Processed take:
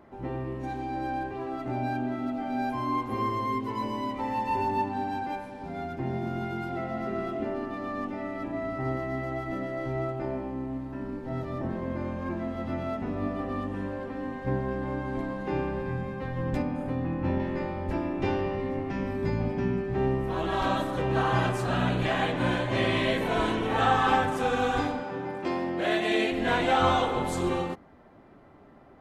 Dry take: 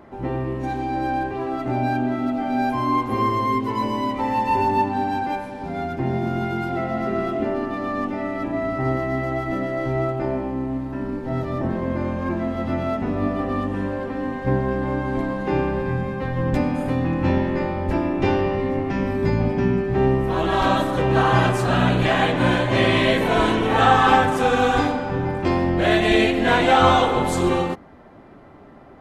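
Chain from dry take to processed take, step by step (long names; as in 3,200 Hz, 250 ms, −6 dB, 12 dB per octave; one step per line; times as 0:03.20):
0:16.62–0:17.40: high-shelf EQ 2,700 Hz −9.5 dB
0:25.03–0:26.32: high-pass filter 220 Hz 12 dB per octave
level −8 dB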